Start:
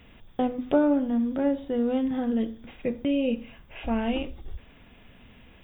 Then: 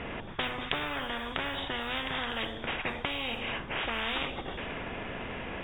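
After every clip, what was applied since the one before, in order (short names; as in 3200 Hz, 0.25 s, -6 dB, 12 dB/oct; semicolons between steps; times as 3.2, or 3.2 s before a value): low-pass opened by the level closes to 1900 Hz, open at -20.5 dBFS; spectral compressor 10:1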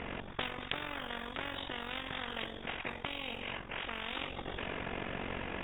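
vocal rider 0.5 s; AM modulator 46 Hz, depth 60%; gain -2.5 dB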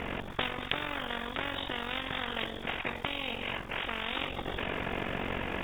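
crackle 490/s -53 dBFS; gain +5 dB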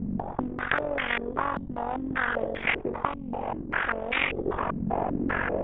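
stepped low-pass 5.1 Hz 210–2200 Hz; gain +3.5 dB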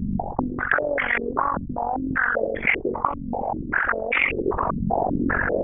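formant sharpening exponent 2; gain +5.5 dB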